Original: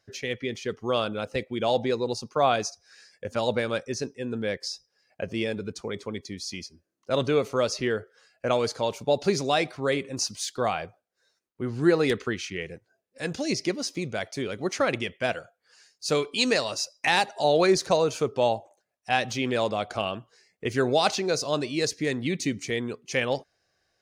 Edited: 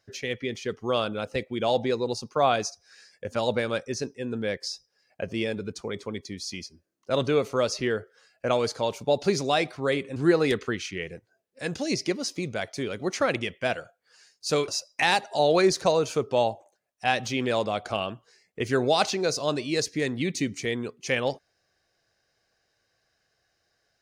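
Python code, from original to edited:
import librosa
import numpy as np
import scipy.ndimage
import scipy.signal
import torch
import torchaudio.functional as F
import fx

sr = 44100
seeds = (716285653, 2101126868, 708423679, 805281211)

y = fx.edit(x, sr, fx.cut(start_s=10.16, length_s=1.59),
    fx.cut(start_s=16.27, length_s=0.46), tone=tone)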